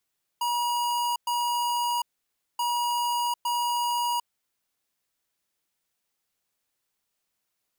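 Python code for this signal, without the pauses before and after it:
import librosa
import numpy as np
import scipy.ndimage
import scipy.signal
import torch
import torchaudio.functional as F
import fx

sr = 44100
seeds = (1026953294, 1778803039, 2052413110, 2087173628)

y = fx.beep_pattern(sr, wave='square', hz=959.0, on_s=0.75, off_s=0.11, beeps=2, pause_s=0.57, groups=2, level_db=-26.5)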